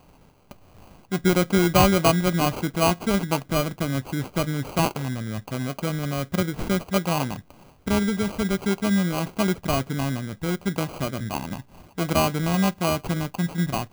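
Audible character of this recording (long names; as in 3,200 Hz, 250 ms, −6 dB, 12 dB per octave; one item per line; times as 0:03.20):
aliases and images of a low sample rate 1,800 Hz, jitter 0%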